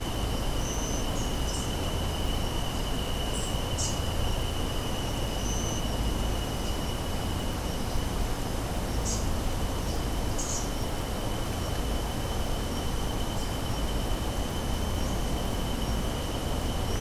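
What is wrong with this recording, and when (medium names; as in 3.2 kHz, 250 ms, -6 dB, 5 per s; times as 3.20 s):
crackle 41 per s -36 dBFS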